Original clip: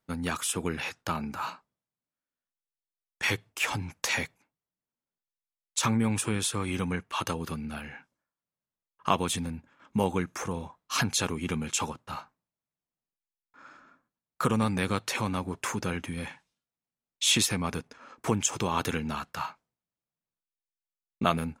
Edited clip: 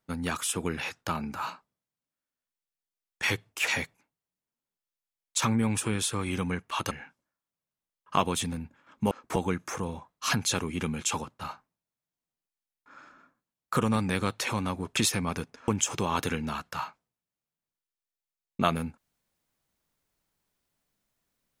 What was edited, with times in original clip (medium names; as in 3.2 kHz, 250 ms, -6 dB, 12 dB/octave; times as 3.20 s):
3.67–4.08 s: delete
7.32–7.84 s: delete
15.65–17.34 s: delete
18.05–18.30 s: move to 10.04 s